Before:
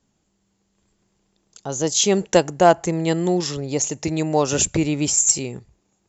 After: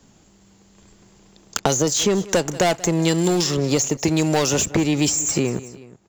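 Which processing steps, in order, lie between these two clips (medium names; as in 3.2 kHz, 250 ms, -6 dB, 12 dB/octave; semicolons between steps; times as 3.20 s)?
waveshaping leveller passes 3; feedback delay 184 ms, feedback 31%, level -21.5 dB; three bands compressed up and down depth 100%; trim -8.5 dB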